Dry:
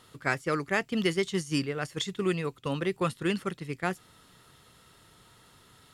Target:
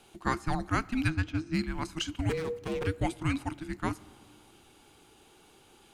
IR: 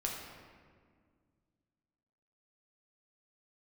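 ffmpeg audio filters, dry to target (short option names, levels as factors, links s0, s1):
-filter_complex "[0:a]asettb=1/sr,asplit=3[s0][s1][s2];[s0]atrim=end=1.084[s3];[s1]atrim=start=1.08:end=1.59,asetpts=PTS-STARTPTS,afade=t=in:d=0.004:c=qsin,afade=t=out:st=0.506:d=0.004:c=qsin,adynamicsmooth=sensitivity=2.5:basefreq=2400[s4];[s2]atrim=start=1.586[s5];[s3][s4]acrossfade=d=0.004:c1=hsin:c2=qsin[s6];[s6][s5]acrossfade=d=0.004:c1=qsin:c2=hsin,asettb=1/sr,asplit=3[s7][s8][s9];[s7]atrim=end=2.294[s10];[s8]atrim=start=2.29:end=2.87,asetpts=PTS-STARTPTS,afade=t=in:d=0.004:c=qsin,afade=t=out:st=0.576:d=0.004:c=qsin,aeval=exprs='abs(val(0))':c=same[s11];[s9]atrim=start=2.866[s12];[s10][s11]acrossfade=d=0.004:c1=hsin:c2=qsin[s13];[s13][s12]acrossfade=d=0.004:c1=qsin:c2=hsin,afreqshift=-480,asplit=2[s14][s15];[1:a]atrim=start_sample=2205[s16];[s15][s16]afir=irnorm=-1:irlink=0,volume=0.112[s17];[s14][s17]amix=inputs=2:normalize=0,volume=0.794"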